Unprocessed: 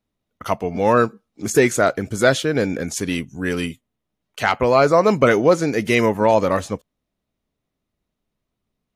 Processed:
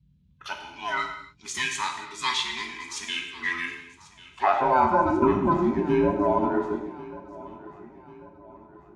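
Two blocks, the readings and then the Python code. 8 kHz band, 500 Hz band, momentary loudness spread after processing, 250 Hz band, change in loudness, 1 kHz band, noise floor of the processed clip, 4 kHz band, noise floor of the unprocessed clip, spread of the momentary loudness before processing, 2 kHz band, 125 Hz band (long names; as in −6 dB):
−8.5 dB, −10.0 dB, 19 LU, −5.5 dB, −7.0 dB, −2.5 dB, −59 dBFS, −1.5 dB, −80 dBFS, 11 LU, −6.5 dB, −10.0 dB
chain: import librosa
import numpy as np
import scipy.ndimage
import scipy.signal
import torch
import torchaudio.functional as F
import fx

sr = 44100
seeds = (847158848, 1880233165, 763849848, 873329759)

y = fx.band_invert(x, sr, width_hz=500)
y = scipy.signal.sosfilt(scipy.signal.butter(4, 11000.0, 'lowpass', fs=sr, output='sos'), y)
y = fx.filter_sweep_bandpass(y, sr, from_hz=3400.0, to_hz=380.0, start_s=2.92, end_s=5.23, q=1.6)
y = fx.dmg_noise_band(y, sr, seeds[0], low_hz=48.0, high_hz=180.0, level_db=-63.0)
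y = fx.echo_feedback(y, sr, ms=1092, feedback_pct=45, wet_db=-19.0)
y = fx.rev_gated(y, sr, seeds[1], gate_ms=310, shape='falling', drr_db=2.5)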